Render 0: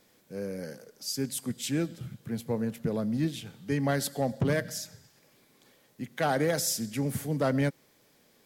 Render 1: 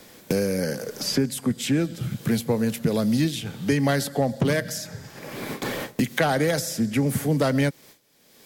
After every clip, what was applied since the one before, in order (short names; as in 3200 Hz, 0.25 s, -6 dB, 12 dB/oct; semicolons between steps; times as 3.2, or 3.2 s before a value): gate with hold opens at -52 dBFS; three-band squash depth 100%; gain +6.5 dB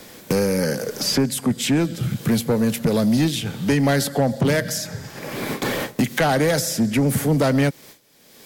soft clip -18 dBFS, distortion -15 dB; gain +6 dB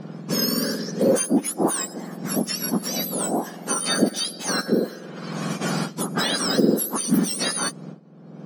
spectrum mirrored in octaves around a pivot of 1600 Hz; low-pass opened by the level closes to 2800 Hz, open at -18 dBFS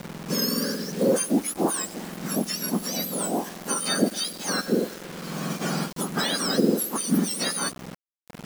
bit-crush 6-bit; gain -2.5 dB